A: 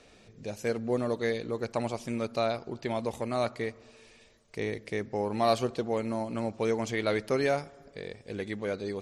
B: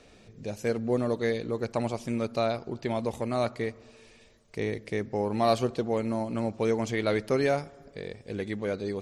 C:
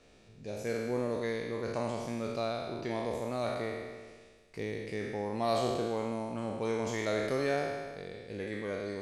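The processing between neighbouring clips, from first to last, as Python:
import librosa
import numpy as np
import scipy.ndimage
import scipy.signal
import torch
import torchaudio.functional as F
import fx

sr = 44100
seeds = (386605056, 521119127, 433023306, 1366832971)

y1 = fx.low_shelf(x, sr, hz=420.0, db=4.0)
y2 = fx.spec_trails(y1, sr, decay_s=1.58)
y2 = F.gain(torch.from_numpy(y2), -8.0).numpy()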